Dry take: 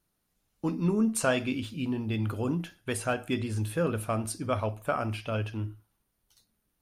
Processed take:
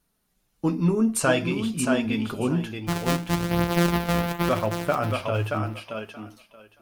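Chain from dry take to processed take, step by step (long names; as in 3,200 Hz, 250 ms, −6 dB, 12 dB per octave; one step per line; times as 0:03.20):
0:02.77–0:04.49: samples sorted by size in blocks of 256 samples
feedback echo with a high-pass in the loop 627 ms, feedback 17%, high-pass 230 Hz, level −4.5 dB
flanger 0.48 Hz, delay 4.1 ms, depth 3.4 ms, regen −37%
level +8.5 dB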